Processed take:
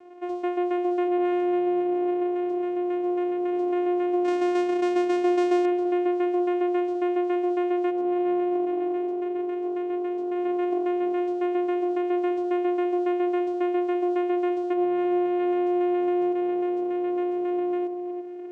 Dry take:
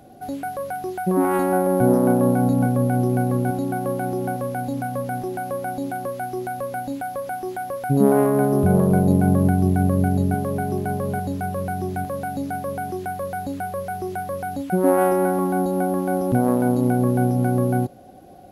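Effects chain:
0:04.24–0:05.65: each half-wave held at its own peak
downward compressor, threshold −20 dBFS, peak gain reduction 9 dB
brickwall limiter −18 dBFS, peak gain reduction 6 dB
channel vocoder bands 4, saw 355 Hz
on a send: delay with a low-pass on its return 341 ms, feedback 41%, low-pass 1,200 Hz, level −8 dB

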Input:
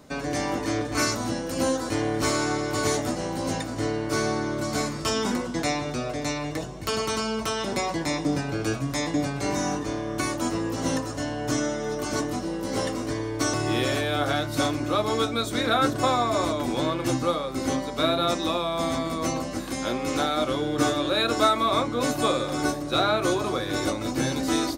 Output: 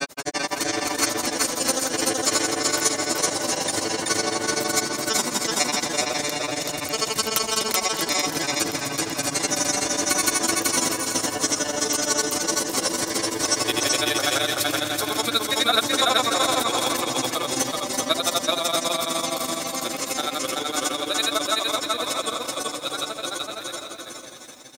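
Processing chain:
fade-out on the ending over 7.55 s
RIAA equalisation recording
in parallel at +0.5 dB: downward compressor, threshold −32 dBFS, peak gain reduction 16 dB
on the sum: granular cloud 65 ms, grains 12 per second, pitch spread up and down by 0 semitones
on a send: bouncing-ball delay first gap 380 ms, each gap 0.7×, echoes 5
on the sum: feedback echo at a low word length 380 ms, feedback 35%, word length 8 bits, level −13.5 dB
level +2.5 dB

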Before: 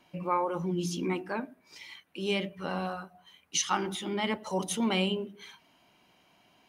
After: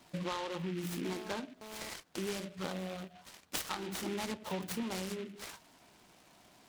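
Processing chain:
0:02.72–0:03.16: gain on a spectral selection 720–3,100 Hz −11 dB
0:04.31–0:04.83: low-shelf EQ 180 Hz +10 dB
downward compressor 12 to 1, threshold −37 dBFS, peak gain reduction 15 dB
0:01.05–0:01.89: phone interference −51 dBFS
short delay modulated by noise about 2,200 Hz, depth 0.096 ms
level +2.5 dB

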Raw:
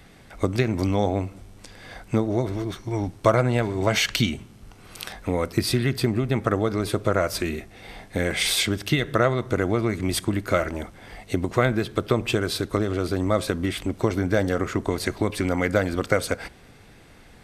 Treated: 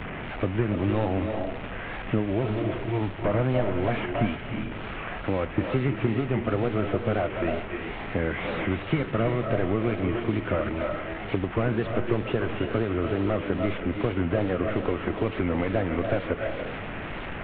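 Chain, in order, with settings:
linear delta modulator 16 kbit/s, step −31 dBFS
tape wow and flutter 120 cents
on a send at −5 dB: convolution reverb RT60 0.50 s, pre-delay 250 ms
on the sum: multiband upward and downward compressor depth 40%
level −2.5 dB

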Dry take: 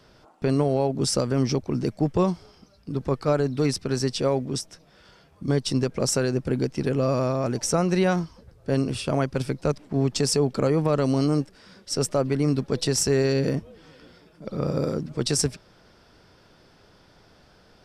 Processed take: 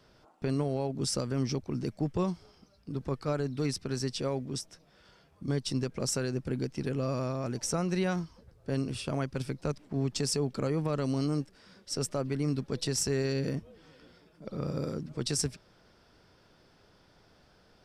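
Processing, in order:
dynamic equaliser 630 Hz, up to −4 dB, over −32 dBFS, Q 0.74
level −6.5 dB

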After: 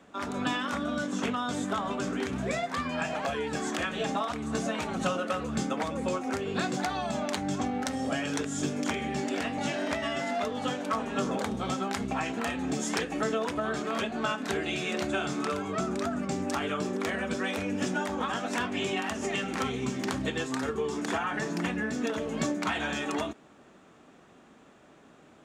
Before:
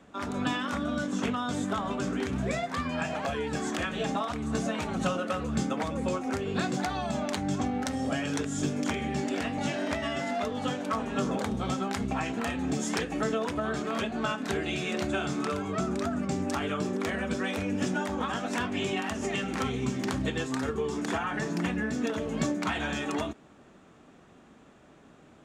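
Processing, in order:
low-shelf EQ 150 Hz −8.5 dB
level +1 dB

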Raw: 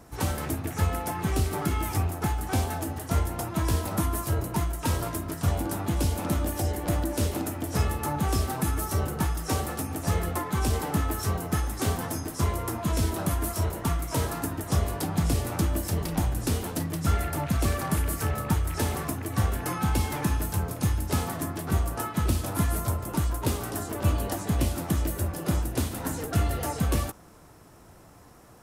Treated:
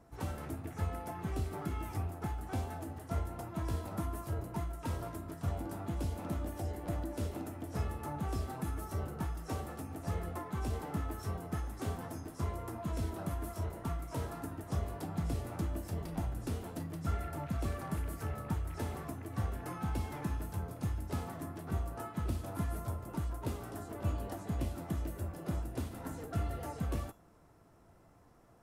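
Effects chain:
high-shelf EQ 2,400 Hz −9 dB
tuned comb filter 680 Hz, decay 0.35 s, mix 70%

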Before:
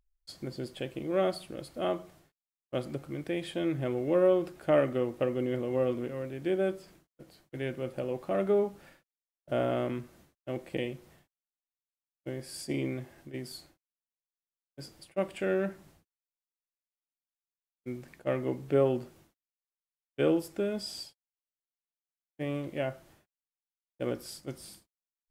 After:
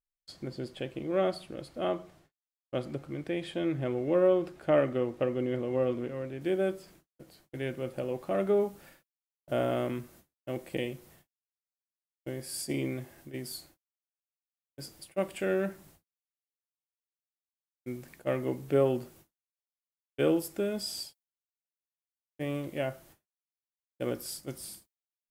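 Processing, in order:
noise gate with hold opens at −49 dBFS
high-shelf EQ 8,700 Hz −8.5 dB, from 0:06.41 +5.5 dB, from 0:08.60 +12 dB

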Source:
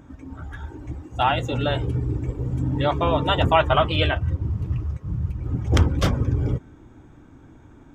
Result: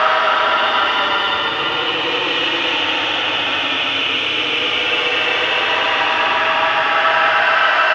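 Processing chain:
single-tap delay 530 ms −6 dB
leveller curve on the samples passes 5
extreme stretch with random phases 26×, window 0.10 s, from 0:03.82
speech leveller
loudspeaker in its box 470–4,700 Hz, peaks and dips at 600 Hz −4 dB, 880 Hz +3 dB, 1,300 Hz +8 dB, 1,800 Hz +7 dB, 2,800 Hz +6 dB, 4,200 Hz −4 dB
level −8.5 dB

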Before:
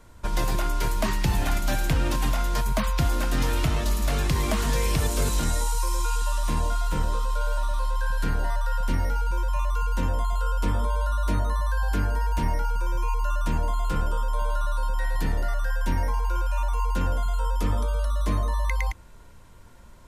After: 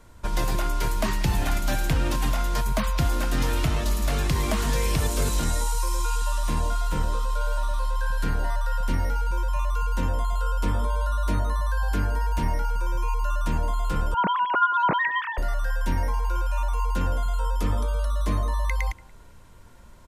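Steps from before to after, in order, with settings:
0:14.14–0:15.38: three sine waves on the formant tracks
far-end echo of a speakerphone 180 ms, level −22 dB

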